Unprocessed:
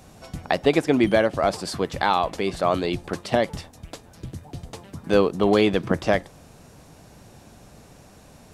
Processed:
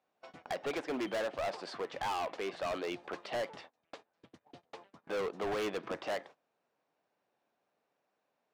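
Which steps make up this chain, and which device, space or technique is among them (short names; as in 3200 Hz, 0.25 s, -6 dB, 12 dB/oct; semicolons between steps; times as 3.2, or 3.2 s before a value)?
walkie-talkie (BPF 460–3000 Hz; hard clip -26 dBFS, distortion -5 dB; gate -46 dBFS, range -21 dB); gain -6 dB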